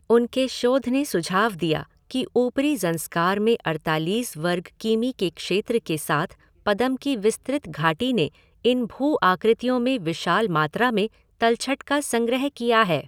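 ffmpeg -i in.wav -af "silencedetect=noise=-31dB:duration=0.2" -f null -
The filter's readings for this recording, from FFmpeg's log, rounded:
silence_start: 1.83
silence_end: 2.11 | silence_duration: 0.28
silence_start: 6.31
silence_end: 6.66 | silence_duration: 0.35
silence_start: 8.28
silence_end: 8.65 | silence_duration: 0.37
silence_start: 11.07
silence_end: 11.41 | silence_duration: 0.34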